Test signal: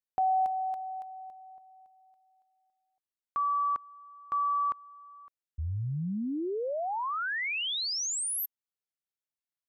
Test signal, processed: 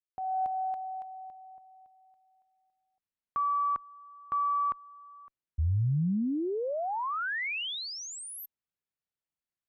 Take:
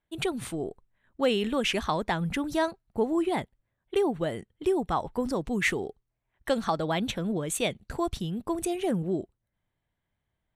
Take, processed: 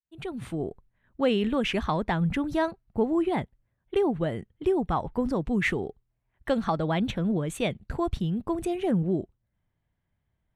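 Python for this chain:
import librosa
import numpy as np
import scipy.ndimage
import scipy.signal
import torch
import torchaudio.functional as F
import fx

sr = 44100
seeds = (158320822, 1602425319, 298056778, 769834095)

y = fx.fade_in_head(x, sr, length_s=0.6)
y = fx.bass_treble(y, sr, bass_db=6, treble_db=-10)
y = fx.cheby_harmonics(y, sr, harmonics=(4,), levels_db=(-41,), full_scale_db=-12.5)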